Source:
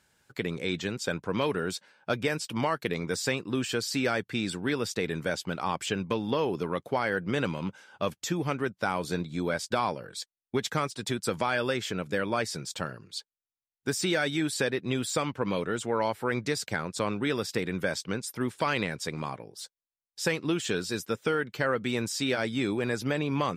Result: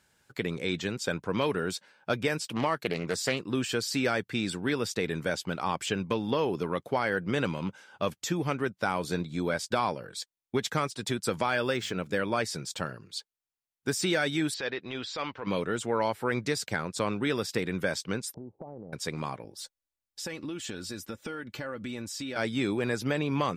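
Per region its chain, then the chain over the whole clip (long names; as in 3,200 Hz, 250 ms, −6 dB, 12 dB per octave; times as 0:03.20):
0:02.43–0:03.41: high-pass filter 80 Hz + highs frequency-modulated by the lows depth 0.26 ms
0:11.43–0:12.11: running median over 3 samples + mains-hum notches 50/100/150/200 Hz
0:14.54–0:15.47: inverse Chebyshev low-pass filter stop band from 11,000 Hz, stop band 50 dB + parametric band 150 Hz −12 dB 2.3 octaves + transient designer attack −8 dB, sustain +2 dB
0:18.34–0:18.93: Chebyshev low-pass filter 820 Hz, order 5 + downward compressor 10 to 1, threshold −38 dBFS
0:19.44–0:22.36: low-shelf EQ 110 Hz +11 dB + comb filter 3.5 ms, depth 44% + downward compressor 4 to 1, threshold −35 dBFS
whole clip: no processing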